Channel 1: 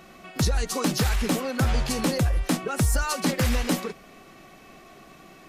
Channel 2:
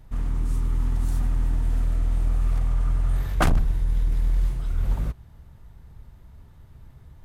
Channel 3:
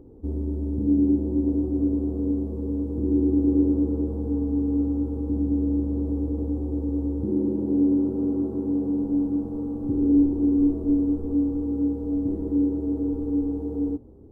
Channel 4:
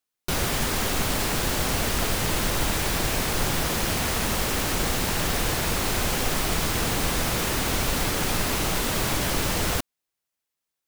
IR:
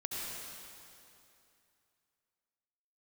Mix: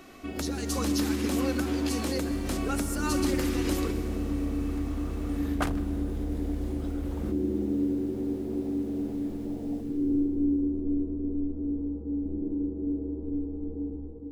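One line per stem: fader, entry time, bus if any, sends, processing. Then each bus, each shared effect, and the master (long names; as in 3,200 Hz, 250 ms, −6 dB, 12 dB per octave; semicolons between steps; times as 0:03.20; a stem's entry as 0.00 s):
−4.0 dB, 0.00 s, no bus, send −9.5 dB, bass and treble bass +3 dB, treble +2 dB; brickwall limiter −20 dBFS, peak gain reduction 8.5 dB; Butterworth high-pass 180 Hz
+2.0 dB, 2.20 s, no bus, send −18 dB, downward compressor 2 to 1, threshold −35 dBFS, peak gain reduction 10.5 dB
−11.5 dB, 0.00 s, bus A, send −4 dB, spectral tilt −4 dB per octave
−13.5 dB, 0.00 s, bus A, send −23 dB, no processing
bus A: 0.0 dB, elliptic band-pass filter 110–740 Hz; downward compressor, threshold −30 dBFS, peak gain reduction 10.5 dB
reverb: on, RT60 2.7 s, pre-delay 63 ms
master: low-shelf EQ 180 Hz −10 dB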